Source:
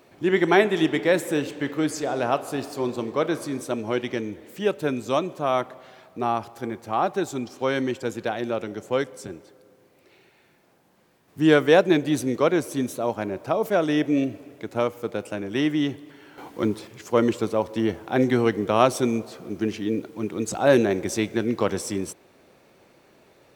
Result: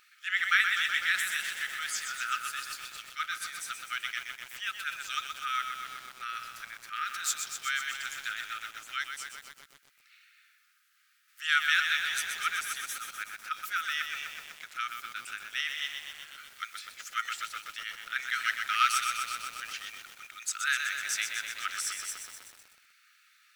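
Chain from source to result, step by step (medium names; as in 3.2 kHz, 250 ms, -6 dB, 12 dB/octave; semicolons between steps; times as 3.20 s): 6.96–7.39 s: transient shaper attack -11 dB, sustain +10 dB; 18.33–18.92 s: waveshaping leveller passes 1; brick-wall FIR high-pass 1.2 kHz; bit-crushed delay 125 ms, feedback 80%, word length 8-bit, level -6 dB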